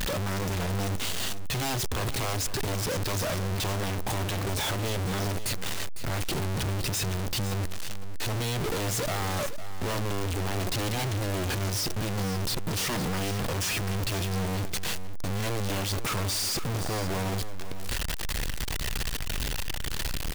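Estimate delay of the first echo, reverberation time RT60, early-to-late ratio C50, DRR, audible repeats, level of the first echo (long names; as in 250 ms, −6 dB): 504 ms, no reverb audible, no reverb audible, no reverb audible, 1, −12.5 dB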